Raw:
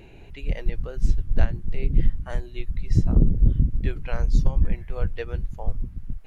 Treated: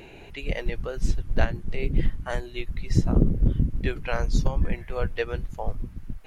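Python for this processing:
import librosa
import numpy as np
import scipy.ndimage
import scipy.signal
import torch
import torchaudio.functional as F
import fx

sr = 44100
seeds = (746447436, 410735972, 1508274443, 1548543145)

y = fx.low_shelf(x, sr, hz=200.0, db=-11.0)
y = y * 10.0 ** (6.5 / 20.0)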